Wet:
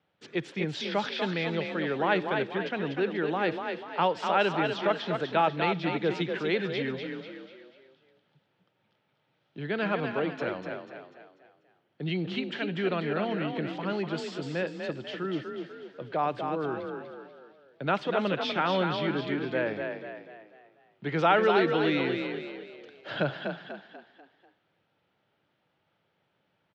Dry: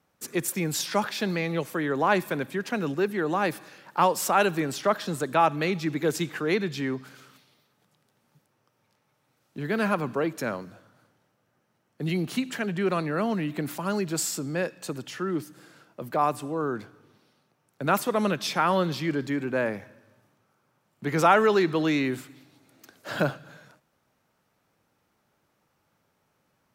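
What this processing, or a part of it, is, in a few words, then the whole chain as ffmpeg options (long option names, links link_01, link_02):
frequency-shifting delay pedal into a guitar cabinet: -filter_complex "[0:a]asplit=6[link_01][link_02][link_03][link_04][link_05][link_06];[link_02]adelay=245,afreqshift=33,volume=-5.5dB[link_07];[link_03]adelay=490,afreqshift=66,volume=-12.8dB[link_08];[link_04]adelay=735,afreqshift=99,volume=-20.2dB[link_09];[link_05]adelay=980,afreqshift=132,volume=-27.5dB[link_10];[link_06]adelay=1225,afreqshift=165,volume=-34.8dB[link_11];[link_01][link_07][link_08][link_09][link_10][link_11]amix=inputs=6:normalize=0,highpass=90,equalizer=frequency=240:width_type=q:width=4:gain=-6,equalizer=frequency=1100:width_type=q:width=4:gain=-6,equalizer=frequency=3200:width_type=q:width=4:gain=6,lowpass=frequency=4000:width=0.5412,lowpass=frequency=4000:width=1.3066,volume=-2.5dB"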